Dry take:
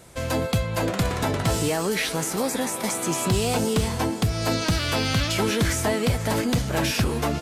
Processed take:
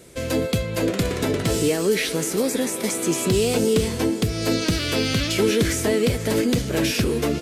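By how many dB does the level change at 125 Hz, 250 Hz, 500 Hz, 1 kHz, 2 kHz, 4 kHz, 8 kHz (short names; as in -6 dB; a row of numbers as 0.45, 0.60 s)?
-1.0, +3.5, +4.5, -5.0, +0.5, +1.5, +1.5 dB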